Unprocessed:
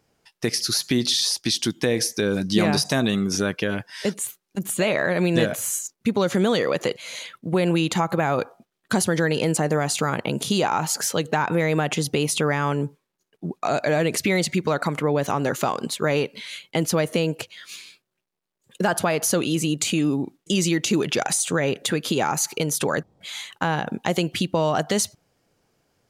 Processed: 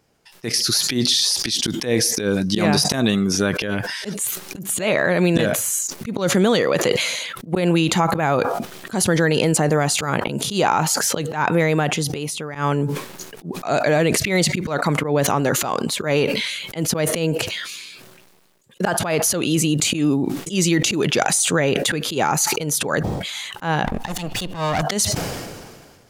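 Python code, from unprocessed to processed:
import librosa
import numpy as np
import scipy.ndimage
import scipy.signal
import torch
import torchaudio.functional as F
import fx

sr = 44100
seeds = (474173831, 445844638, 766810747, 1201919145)

y = fx.lower_of_two(x, sr, delay_ms=1.1, at=(23.84, 24.81), fade=0.02)
y = fx.edit(y, sr, fx.fade_out_to(start_s=11.65, length_s=0.9, floor_db=-16.5), tone=tone)
y = fx.auto_swell(y, sr, attack_ms=100.0)
y = fx.sustainer(y, sr, db_per_s=34.0)
y = y * 10.0 ** (3.5 / 20.0)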